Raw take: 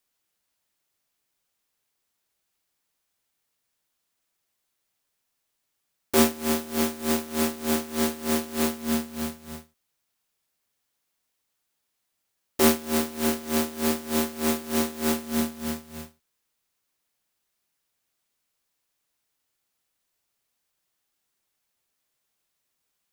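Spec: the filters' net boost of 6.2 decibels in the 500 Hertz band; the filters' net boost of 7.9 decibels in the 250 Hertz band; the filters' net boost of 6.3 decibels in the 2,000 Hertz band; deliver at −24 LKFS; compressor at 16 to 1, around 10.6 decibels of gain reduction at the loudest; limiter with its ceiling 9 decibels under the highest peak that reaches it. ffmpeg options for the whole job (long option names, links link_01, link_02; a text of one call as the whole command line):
ffmpeg -i in.wav -af "equalizer=frequency=250:width_type=o:gain=7.5,equalizer=frequency=500:width_type=o:gain=5,equalizer=frequency=2000:width_type=o:gain=7.5,acompressor=threshold=-18dB:ratio=16,volume=3dB,alimiter=limit=-13dB:level=0:latency=1" out.wav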